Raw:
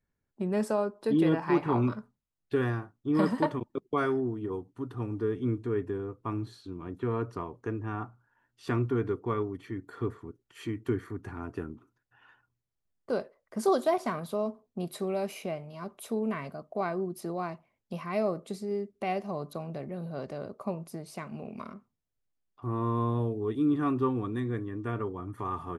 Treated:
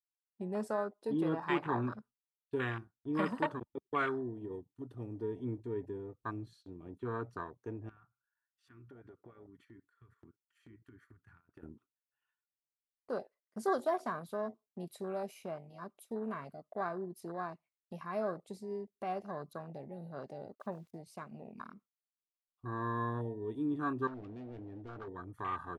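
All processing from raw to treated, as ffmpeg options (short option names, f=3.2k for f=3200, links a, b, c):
-filter_complex "[0:a]asettb=1/sr,asplit=3[a][b][c];[a]atrim=end=7.894[d];[b]atrim=start=7.89:end=11.63,asetpts=PTS-STARTPTS,afade=t=in:d=0.004:c=qsin,afade=t=out:st=3.736:d=0.004:c=qsin,equalizer=f=1.5k:t=o:w=0.94:g=12.5,acompressor=threshold=-42dB:ratio=8:attack=3.2:release=140:knee=1:detection=peak[e];[c]atrim=start=11.626[f];[d][e]acrossfade=d=0.004:c1=hsin:c2=qsin[g];[g][f]acrossfade=d=0.004:c1=qsin:c2=hsin,asettb=1/sr,asplit=3[h][i][j];[h]atrim=end=20.554[k];[i]atrim=start=20.55:end=20.96,asetpts=PTS-STARTPTS,afade=t=in:d=0.004:c=qsin,afade=t=out:st=0.406:d=0.004:c=qsin,agate=range=-33dB:threshold=-48dB:ratio=3:release=100:detection=peak,lowpass=f=2.5k:p=1,aeval=exprs='val(0)*gte(abs(val(0)),0.002)':c=same[l];[j]atrim=start=20.956[m];[k][l]acrossfade=d=0.004:c1=hsin:c2=qsin[n];[n][m]acrossfade=d=0.004:c1=qsin:c2=hsin,asettb=1/sr,asplit=3[o][p][q];[o]atrim=end=24.074[r];[p]atrim=start=24.07:end=25.08,asetpts=PTS-STARTPTS,afade=t=in:d=0.004:c=qsin,afade=t=out:st=1.006:d=0.004:c=qsin,volume=35.5dB,asoftclip=hard,volume=-35.5dB,adynamicsmooth=sensitivity=3.5:basefreq=3.6k,asplit=2[s][t];[t]adelay=20,volume=-12dB[u];[s][u]amix=inputs=2:normalize=0,atrim=end_sample=44541[v];[q]atrim=start=25.076[w];[r][v]acrossfade=d=0.004:c1=hsin:c2=qsin[x];[x][w]acrossfade=d=0.004:c1=qsin:c2=hsin,afwtdn=0.0141,agate=range=-13dB:threshold=-55dB:ratio=16:detection=peak,tiltshelf=f=1.3k:g=-8,volume=-1.5dB"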